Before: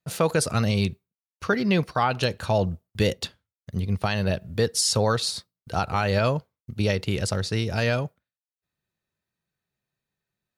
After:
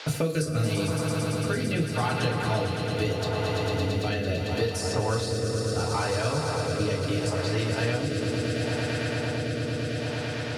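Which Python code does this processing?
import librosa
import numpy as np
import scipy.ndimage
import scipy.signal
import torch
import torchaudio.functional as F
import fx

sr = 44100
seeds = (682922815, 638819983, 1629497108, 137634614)

y = fx.echo_swell(x, sr, ms=112, loudest=5, wet_db=-10.0)
y = fx.rev_fdn(y, sr, rt60_s=0.37, lf_ratio=1.05, hf_ratio=0.75, size_ms=20.0, drr_db=-3.5)
y = fx.dmg_noise_band(y, sr, seeds[0], low_hz=310.0, high_hz=4900.0, level_db=-51.0)
y = fx.rotary(y, sr, hz=0.75)
y = fx.band_squash(y, sr, depth_pct=100)
y = y * librosa.db_to_amplitude(-8.0)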